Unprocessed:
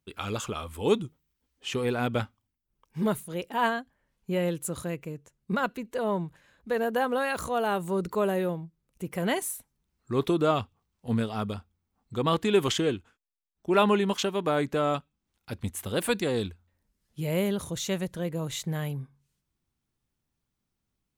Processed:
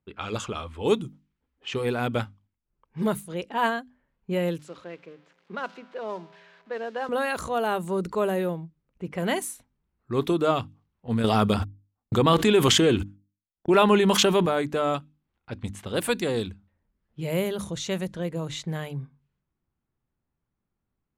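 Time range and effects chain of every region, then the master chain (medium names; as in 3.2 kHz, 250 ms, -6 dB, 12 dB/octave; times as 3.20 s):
4.59–7.09 s: zero-crossing glitches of -30 dBFS + three-band isolator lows -18 dB, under 240 Hz, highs -17 dB, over 5.6 kHz + feedback comb 58 Hz, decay 1.8 s, harmonics odd, mix 50%
11.24–14.46 s: gate -50 dBFS, range -53 dB + level flattener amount 70%
whole clip: level-controlled noise filter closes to 1.7 kHz, open at -25 dBFS; hum notches 50/100/150/200/250/300 Hz; trim +1.5 dB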